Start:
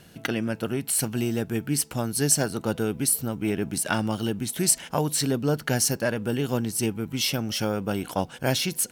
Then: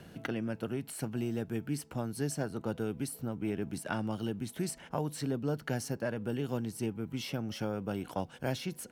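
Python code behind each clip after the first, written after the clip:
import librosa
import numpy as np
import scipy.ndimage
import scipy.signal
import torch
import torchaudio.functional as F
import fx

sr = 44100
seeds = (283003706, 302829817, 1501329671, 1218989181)

y = fx.high_shelf(x, sr, hz=2600.0, db=-11.5)
y = fx.band_squash(y, sr, depth_pct=40)
y = F.gain(torch.from_numpy(y), -8.0).numpy()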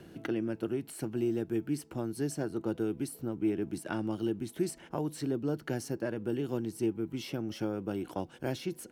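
y = fx.peak_eq(x, sr, hz=340.0, db=11.5, octaves=0.43)
y = F.gain(torch.from_numpy(y), -2.5).numpy()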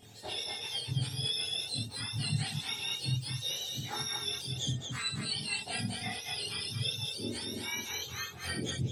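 y = fx.octave_mirror(x, sr, pivot_hz=1100.0)
y = fx.chorus_voices(y, sr, voices=2, hz=0.23, base_ms=26, depth_ms=3.5, mix_pct=60)
y = fx.echo_multitap(y, sr, ms=(63, 224), db=(-7.5, -6.0))
y = F.gain(torch.from_numpy(y), 3.5).numpy()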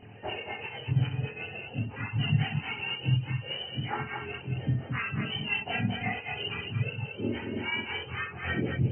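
y = fx.brickwall_lowpass(x, sr, high_hz=3100.0)
y = F.gain(torch.from_numpy(y), 7.0).numpy()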